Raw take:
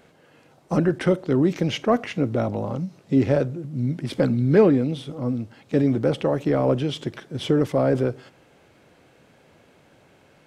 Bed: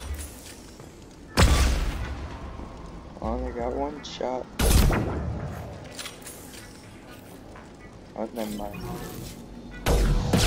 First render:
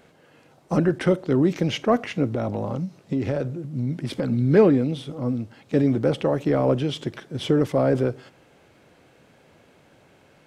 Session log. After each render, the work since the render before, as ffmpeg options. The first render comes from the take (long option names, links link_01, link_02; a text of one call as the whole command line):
ffmpeg -i in.wav -filter_complex "[0:a]asettb=1/sr,asplit=3[link_01][link_02][link_03];[link_01]atrim=end=2.274[link_04];[link_02]atrim=start=2.27:end=4.32,asetpts=PTS-STARTPTS,afade=type=in:duration=0.004:curve=qsin,afade=type=out:start_time=2.046:duration=0.004:curve=qsin,acompressor=threshold=-20dB:ratio=6:attack=3.2:release=140:knee=1:detection=peak[link_05];[link_03]atrim=start=4.316[link_06];[link_04][link_05]acrossfade=duration=0.004:curve1=hsin:curve2=qsin[link_07];[link_07][link_06]acrossfade=duration=0.004:curve1=qsin:curve2=hsin" out.wav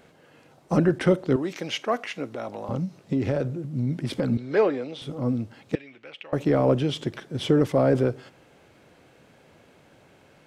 ffmpeg -i in.wav -filter_complex "[0:a]asettb=1/sr,asplit=3[link_01][link_02][link_03];[link_01]atrim=end=1.364[link_04];[link_02]atrim=start=1.36:end=2.69,asetpts=PTS-STARTPTS,afade=type=in:duration=0.004:curve=qsin,afade=type=out:start_time=1.326:duration=0.004:curve=qsin,highpass=frequency=880:poles=1[link_05];[link_03]atrim=start=2.686[link_06];[link_04][link_05]acrossfade=duration=0.004:curve1=hsin:curve2=qsin[link_07];[link_07][link_06]acrossfade=duration=0.004:curve1=qsin:curve2=hsin,asettb=1/sr,asplit=3[link_08][link_09][link_10];[link_08]atrim=end=4.374[link_11];[link_09]atrim=start=4.37:end=5.02,asetpts=PTS-STARTPTS,afade=type=in:duration=0.004:curve=qsin,afade=type=out:start_time=0.646:duration=0.004:curve=qsin,acrossover=split=410 7400:gain=0.1 1 0.126[link_12][link_13][link_14];[link_12][link_13][link_14]amix=inputs=3:normalize=0[link_15];[link_10]atrim=start=5.016[link_16];[link_11][link_15]acrossfade=duration=0.004:curve1=hsin:curve2=qsin[link_17];[link_17][link_16]acrossfade=duration=0.004:curve1=qsin:curve2=hsin,asettb=1/sr,asplit=3[link_18][link_19][link_20];[link_18]atrim=end=5.754[link_21];[link_19]atrim=start=5.75:end=6.33,asetpts=PTS-STARTPTS,afade=type=in:duration=0.004:curve=qsin,afade=type=out:start_time=0.576:duration=0.004:curve=qsin,bandpass=frequency=2500:width_type=q:width=3.4[link_22];[link_20]atrim=start=6.326[link_23];[link_21][link_22]acrossfade=duration=0.004:curve1=hsin:curve2=qsin[link_24];[link_24][link_23]acrossfade=duration=0.004:curve1=qsin:curve2=hsin" out.wav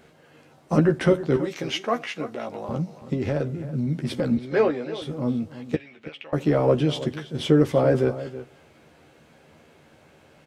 ffmpeg -i in.wav -filter_complex "[0:a]asplit=2[link_01][link_02];[link_02]adelay=13,volume=-5.5dB[link_03];[link_01][link_03]amix=inputs=2:normalize=0,asplit=2[link_04][link_05];[link_05]adelay=326.5,volume=-14dB,highshelf=frequency=4000:gain=-7.35[link_06];[link_04][link_06]amix=inputs=2:normalize=0" out.wav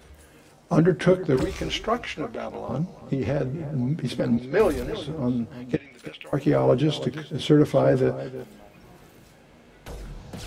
ffmpeg -i in.wav -i bed.wav -filter_complex "[1:a]volume=-16.5dB[link_01];[0:a][link_01]amix=inputs=2:normalize=0" out.wav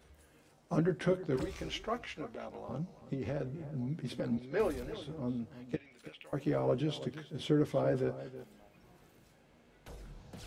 ffmpeg -i in.wav -af "volume=-11.5dB" out.wav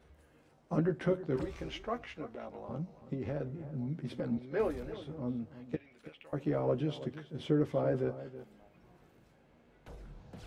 ffmpeg -i in.wav -af "highshelf=frequency=3500:gain=-10.5" out.wav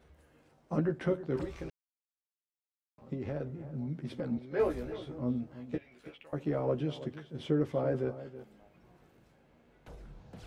ffmpeg -i in.wav -filter_complex "[0:a]asettb=1/sr,asplit=3[link_01][link_02][link_03];[link_01]atrim=end=4.564[link_04];[link_02]atrim=start=4.56:end=6.18,asetpts=PTS-STARTPTS,afade=type=in:duration=0.004:curve=qsin,afade=type=out:start_time=1.616:duration=0.004:curve=qsin,asplit=2[link_05][link_06];[link_06]adelay=16,volume=-3dB[link_07];[link_05][link_07]amix=inputs=2:normalize=0,atrim=end_sample=71442[link_08];[link_03]atrim=start=6.176[link_09];[link_04][link_08]acrossfade=duration=0.004:curve1=hsin:curve2=qsin[link_10];[link_10][link_09]acrossfade=duration=0.004:curve1=qsin:curve2=hsin,asplit=3[link_11][link_12][link_13];[link_11]atrim=end=1.7,asetpts=PTS-STARTPTS,afade=type=out:start_time=1.696:duration=0.004:curve=hsin[link_14];[link_12]atrim=start=1.7:end=2.98,asetpts=PTS-STARTPTS,volume=0[link_15];[link_13]atrim=start=2.98,asetpts=PTS-STARTPTS,afade=type=in:duration=0.004:curve=hsin[link_16];[link_14][link_15][link_16]concat=n=3:v=0:a=1" out.wav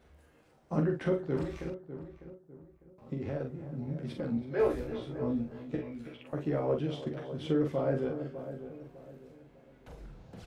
ffmpeg -i in.wav -filter_complex "[0:a]asplit=2[link_01][link_02];[link_02]adelay=43,volume=-5dB[link_03];[link_01][link_03]amix=inputs=2:normalize=0,asplit=2[link_04][link_05];[link_05]adelay=601,lowpass=frequency=1200:poles=1,volume=-11dB,asplit=2[link_06][link_07];[link_07]adelay=601,lowpass=frequency=1200:poles=1,volume=0.36,asplit=2[link_08][link_09];[link_09]adelay=601,lowpass=frequency=1200:poles=1,volume=0.36,asplit=2[link_10][link_11];[link_11]adelay=601,lowpass=frequency=1200:poles=1,volume=0.36[link_12];[link_06][link_08][link_10][link_12]amix=inputs=4:normalize=0[link_13];[link_04][link_13]amix=inputs=2:normalize=0" out.wav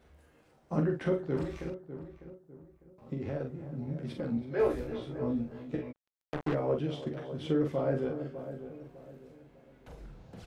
ffmpeg -i in.wav -filter_complex "[0:a]asplit=3[link_01][link_02][link_03];[link_01]afade=type=out:start_time=5.91:duration=0.02[link_04];[link_02]acrusher=bits=4:mix=0:aa=0.5,afade=type=in:start_time=5.91:duration=0.02,afade=type=out:start_time=6.53:duration=0.02[link_05];[link_03]afade=type=in:start_time=6.53:duration=0.02[link_06];[link_04][link_05][link_06]amix=inputs=3:normalize=0" out.wav